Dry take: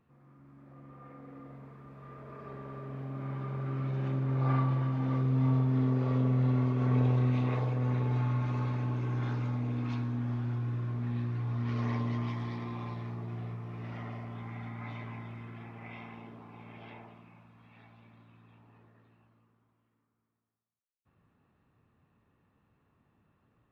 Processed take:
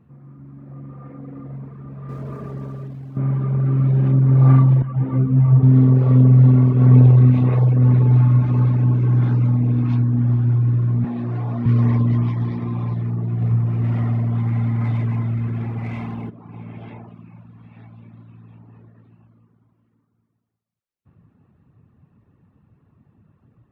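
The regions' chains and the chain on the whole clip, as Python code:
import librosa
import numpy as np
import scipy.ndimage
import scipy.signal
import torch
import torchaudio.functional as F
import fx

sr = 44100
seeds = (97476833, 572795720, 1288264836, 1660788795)

y = fx.chain(x, sr, fx.over_compress(threshold_db=-45.0, ratio=-1.0),
    fx.sample_gate(floor_db=-54.0), at=(2.09, 3.17))
y = fx.chain(y, sr, fx.lowpass(hz=3100.0, slope=24),
    fx.ensemble(), at=(4.82, 5.63))
y = fx.chain(y, sr, fx.highpass(hz=210.0, slope=12),
    fx.peak_eq(hz=700.0, db=9.0, octaves=0.6),
    fx.env_flatten(amount_pct=70), at=(11.04, 11.66))
y = fx.chain(y, sr, fx.law_mismatch(coded='mu'),
    fx.echo_single(ms=95, db=-7.5), at=(13.41, 16.3))
y = fx.high_shelf(y, sr, hz=3200.0, db=-8.0)
y = fx.dereverb_blind(y, sr, rt60_s=0.73)
y = fx.peak_eq(y, sr, hz=130.0, db=12.5, octaves=2.7)
y = y * 10.0 ** (7.0 / 20.0)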